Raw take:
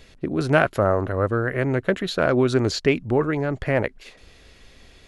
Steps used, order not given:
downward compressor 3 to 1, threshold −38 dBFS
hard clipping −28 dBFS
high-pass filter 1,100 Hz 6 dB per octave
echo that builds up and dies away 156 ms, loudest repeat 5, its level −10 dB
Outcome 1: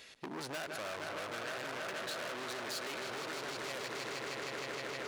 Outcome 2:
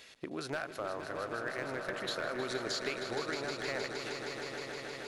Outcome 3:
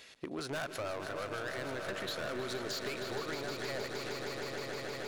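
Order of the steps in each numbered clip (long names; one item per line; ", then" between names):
echo that builds up and dies away, then hard clipping, then high-pass filter, then downward compressor
high-pass filter, then downward compressor, then hard clipping, then echo that builds up and dies away
high-pass filter, then hard clipping, then echo that builds up and dies away, then downward compressor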